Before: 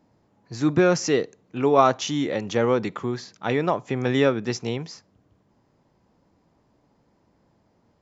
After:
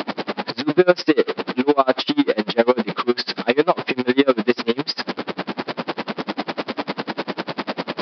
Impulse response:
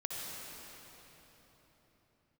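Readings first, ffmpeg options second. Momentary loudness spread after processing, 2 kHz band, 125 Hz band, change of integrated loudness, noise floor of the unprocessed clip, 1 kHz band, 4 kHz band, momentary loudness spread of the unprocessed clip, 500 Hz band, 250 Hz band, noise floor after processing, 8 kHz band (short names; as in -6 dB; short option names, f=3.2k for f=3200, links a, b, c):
10 LU, +6.5 dB, -4.5 dB, +2.0 dB, -66 dBFS, +3.0 dB, +9.0 dB, 12 LU, +4.0 dB, +5.0 dB, -51 dBFS, n/a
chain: -af "aeval=exprs='val(0)+0.5*0.0794*sgn(val(0))':c=same,highpass=f=210:w=0.5412,highpass=f=210:w=1.3066,aresample=11025,aresample=44100,alimiter=level_in=9.5dB:limit=-1dB:release=50:level=0:latency=1,aeval=exprs='val(0)*pow(10,-32*(0.5-0.5*cos(2*PI*10*n/s))/20)':c=same"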